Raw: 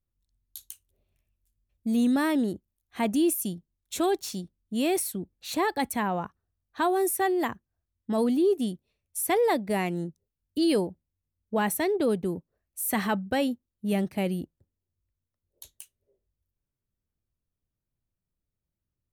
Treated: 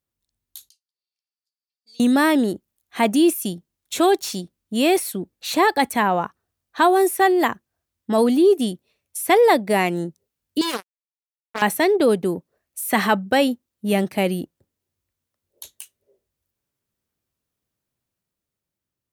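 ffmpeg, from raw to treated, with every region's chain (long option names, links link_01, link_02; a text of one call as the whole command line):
ffmpeg -i in.wav -filter_complex "[0:a]asettb=1/sr,asplit=3[link_01][link_02][link_03];[link_01]atrim=end=0.694[link_04];[link_02]atrim=start=0.69:end=2,asetpts=PTS-STARTPTS,afade=type=in:duration=0.004:curve=qsin,afade=type=out:start_time=1.306:duration=0.004:curve=qsin,bandpass=frequency=4700:width_type=q:width=11,aecho=1:1:2.2:0.48,atrim=end_sample=57771[link_05];[link_03]atrim=start=1.996[link_06];[link_04][link_05]acrossfade=duration=0.004:curve1=hsin:curve2=qsin[link_07];[link_07][link_06]acrossfade=duration=0.004:curve1=qsin:curve2=hsin,asettb=1/sr,asplit=3[link_08][link_09][link_10];[link_08]atrim=end=10.614[link_11];[link_09]atrim=start=10.61:end=11.62,asetpts=PTS-STARTPTS,afade=type=in:duration=0.004:curve=qsin,afade=type=out:start_time=1.006:duration=0.004:curve=qsin,acrusher=bits=2:mix=0:aa=0.5,asoftclip=type=hard:threshold=-24dB[link_12];[link_10]atrim=start=11.616[link_13];[link_11][link_12]acrossfade=duration=0.004:curve1=hsin:curve2=qsin[link_14];[link_14][link_13]acrossfade=duration=0.004:curve1=qsin:curve2=hsin,acrossover=split=3900[link_15][link_16];[link_16]acompressor=threshold=-36dB:ratio=4:attack=1:release=60[link_17];[link_15][link_17]amix=inputs=2:normalize=0,highpass=frequency=320:poles=1,dynaudnorm=framelen=240:gausssize=9:maxgain=4dB,volume=6.5dB" out.wav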